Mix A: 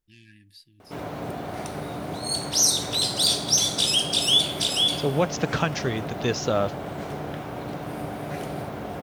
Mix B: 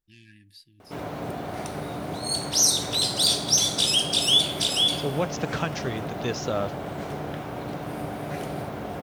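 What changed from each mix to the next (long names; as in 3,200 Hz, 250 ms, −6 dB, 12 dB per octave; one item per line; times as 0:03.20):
second voice −4.0 dB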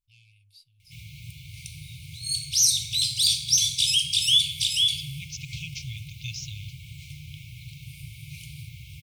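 first voice −3.5 dB
master: add linear-phase brick-wall band-stop 150–2,100 Hz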